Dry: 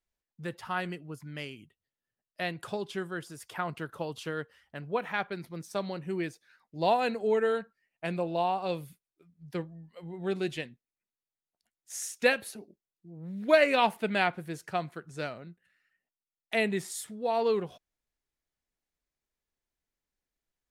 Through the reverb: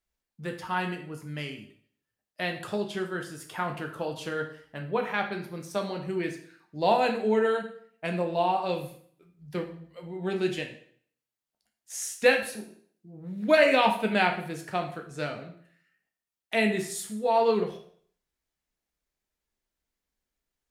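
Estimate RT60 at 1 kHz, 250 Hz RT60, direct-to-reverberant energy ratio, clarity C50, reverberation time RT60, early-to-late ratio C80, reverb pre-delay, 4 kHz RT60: 0.55 s, 0.60 s, 3.0 dB, 8.5 dB, 0.55 s, 12.0 dB, 5 ms, 0.55 s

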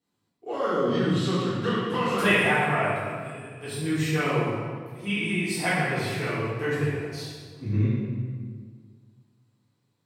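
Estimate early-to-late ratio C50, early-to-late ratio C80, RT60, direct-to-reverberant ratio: -2.0 dB, 0.5 dB, 1.8 s, -10.5 dB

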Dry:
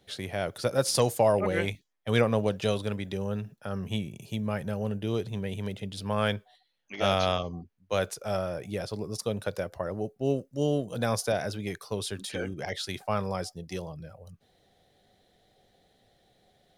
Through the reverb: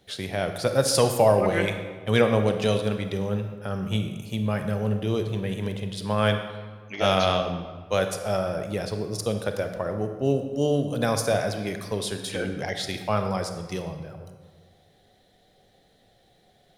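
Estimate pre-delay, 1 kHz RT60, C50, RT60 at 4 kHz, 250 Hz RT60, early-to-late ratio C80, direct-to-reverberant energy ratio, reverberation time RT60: 29 ms, 1.4 s, 7.5 dB, 1.0 s, 1.7 s, 9.0 dB, 6.5 dB, 1.5 s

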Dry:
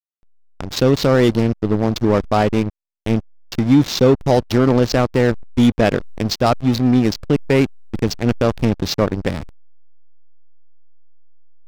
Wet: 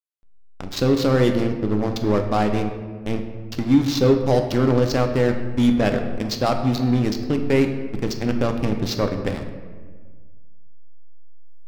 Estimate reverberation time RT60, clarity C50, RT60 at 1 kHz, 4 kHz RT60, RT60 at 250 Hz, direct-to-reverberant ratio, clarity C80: 1.6 s, 7.5 dB, 1.4 s, 0.90 s, 1.9 s, 4.5 dB, 9.0 dB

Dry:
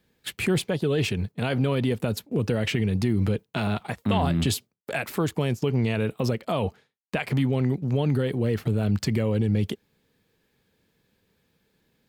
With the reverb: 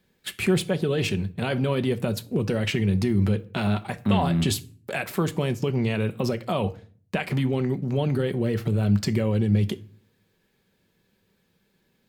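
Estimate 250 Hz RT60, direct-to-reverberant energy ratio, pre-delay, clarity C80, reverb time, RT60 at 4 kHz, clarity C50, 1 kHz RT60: 0.65 s, 8.5 dB, 5 ms, 24.5 dB, 0.45 s, 0.30 s, 20.0 dB, 0.40 s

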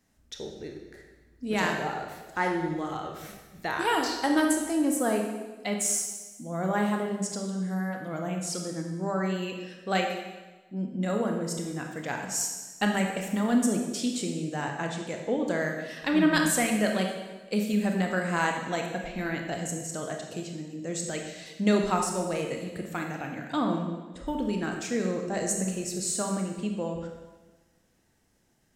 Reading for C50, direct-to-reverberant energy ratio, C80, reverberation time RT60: 4.0 dB, 2.0 dB, 6.0 dB, 1.2 s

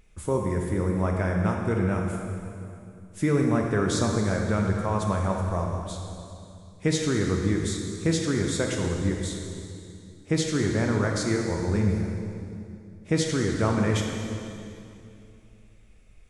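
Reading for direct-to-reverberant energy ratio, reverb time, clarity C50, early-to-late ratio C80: 1.0 dB, 2.6 s, 2.0 dB, 3.5 dB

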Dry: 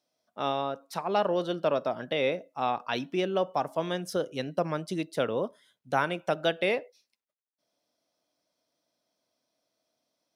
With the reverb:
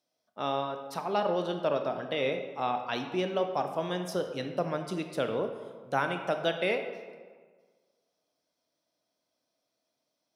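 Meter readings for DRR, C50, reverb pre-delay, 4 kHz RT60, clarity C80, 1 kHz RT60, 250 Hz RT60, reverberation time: 6.0 dB, 7.5 dB, 19 ms, 0.90 s, 9.0 dB, 1.6 s, 1.6 s, 1.6 s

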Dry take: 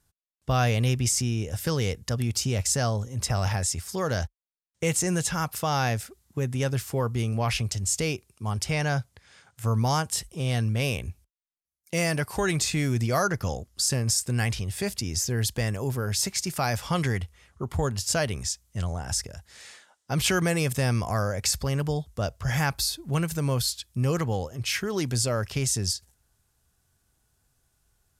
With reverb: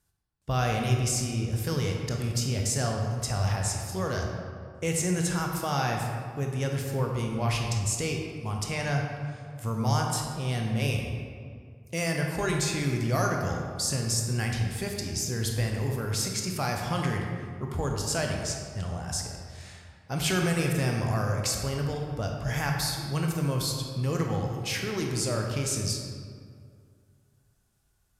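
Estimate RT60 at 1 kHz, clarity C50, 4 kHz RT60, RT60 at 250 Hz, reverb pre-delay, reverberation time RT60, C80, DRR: 2.1 s, 2.5 dB, 1.2 s, 2.4 s, 18 ms, 2.2 s, 4.0 dB, 1.0 dB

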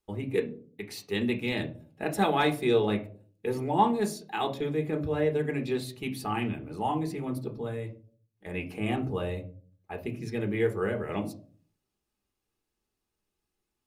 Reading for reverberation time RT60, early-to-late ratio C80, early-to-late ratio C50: 0.45 s, 18.5 dB, 14.0 dB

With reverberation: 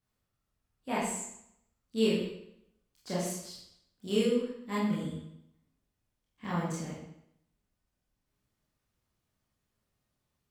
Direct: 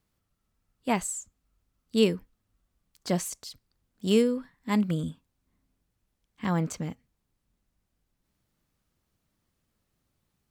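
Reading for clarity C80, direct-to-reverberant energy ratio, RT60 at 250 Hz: 4.5 dB, -8.0 dB, 0.80 s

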